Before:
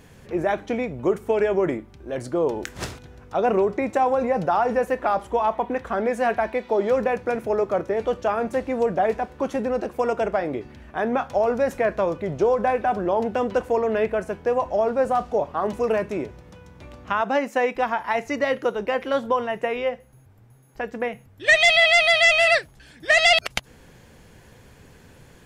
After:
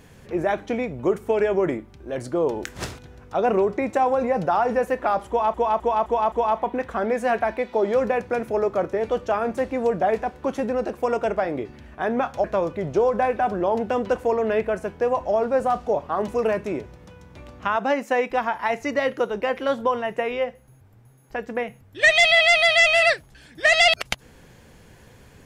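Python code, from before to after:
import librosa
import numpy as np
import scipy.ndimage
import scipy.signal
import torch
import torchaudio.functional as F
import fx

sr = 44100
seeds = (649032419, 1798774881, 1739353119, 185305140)

y = fx.edit(x, sr, fx.repeat(start_s=5.28, length_s=0.26, count=5),
    fx.cut(start_s=11.4, length_s=0.49), tone=tone)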